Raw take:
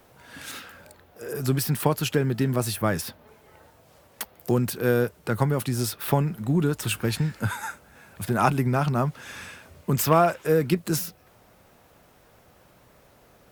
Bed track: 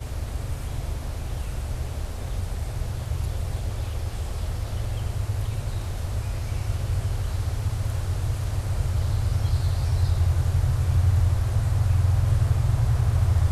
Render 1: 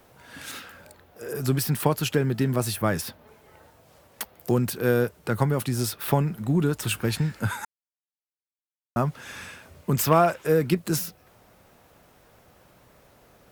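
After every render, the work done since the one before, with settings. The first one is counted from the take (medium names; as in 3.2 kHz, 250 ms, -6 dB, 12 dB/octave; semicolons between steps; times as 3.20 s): 7.65–8.96 s: mute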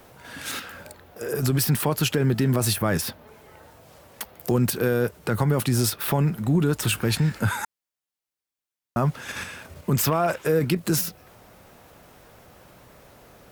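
in parallel at +3 dB: level held to a coarse grid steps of 10 dB; on the sum: peak limiter -12.5 dBFS, peak gain reduction 12 dB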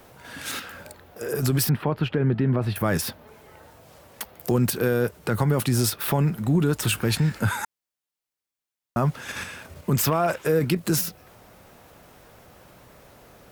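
1.69–2.76 s: distance through air 430 m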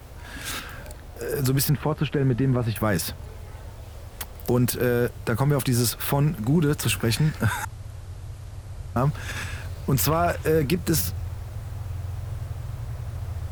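add bed track -11.5 dB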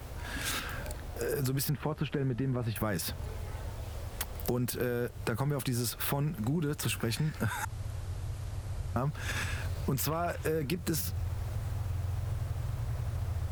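compression 4:1, threshold -30 dBFS, peak gain reduction 11.5 dB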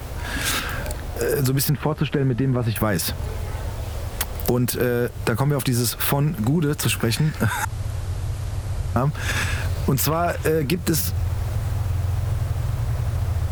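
trim +11 dB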